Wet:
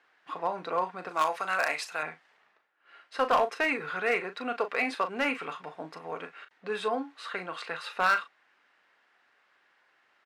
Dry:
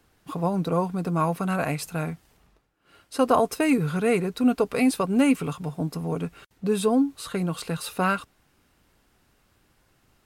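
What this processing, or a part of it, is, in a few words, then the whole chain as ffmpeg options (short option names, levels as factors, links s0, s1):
megaphone: -filter_complex "[0:a]highpass=690,lowpass=3200,equalizer=f=1800:t=o:w=0.59:g=7,asoftclip=type=hard:threshold=0.126,asplit=2[s0][s1];[s1]adelay=38,volume=0.316[s2];[s0][s2]amix=inputs=2:normalize=0,asettb=1/sr,asplit=3[s3][s4][s5];[s3]atrim=end=1.094[s6];[s4]atrim=start=1.09:end=2.03,asetpts=PTS-STARTPTS,afade=t=in:d=0.004:c=qsin,afade=t=out:st=0.936:d=0.004:c=qsin,bass=f=250:g=-9,treble=f=4000:g=12[s7];[s5]atrim=start=2.026[s8];[s6][s7]acrossfade=d=0.004:c1=hsin:c2=qsin[s9];[s9][s8]acrossfade=d=0.004:c1=qsin:c2=hsin"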